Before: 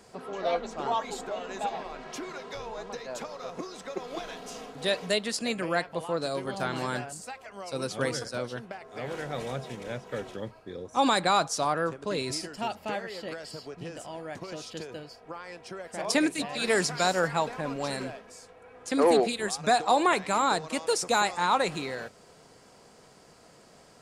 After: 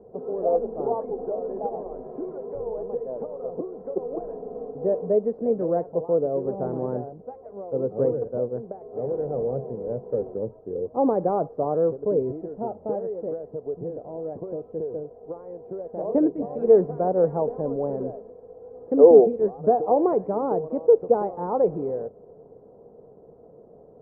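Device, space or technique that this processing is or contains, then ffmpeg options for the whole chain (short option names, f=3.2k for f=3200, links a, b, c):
under water: -af "lowpass=f=710:w=0.5412,lowpass=f=710:w=1.3066,equalizer=f=450:t=o:w=0.44:g=10,volume=3.5dB"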